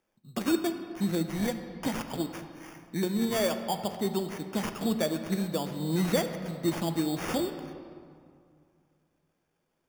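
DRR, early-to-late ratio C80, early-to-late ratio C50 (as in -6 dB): 7.0 dB, 9.5 dB, 8.5 dB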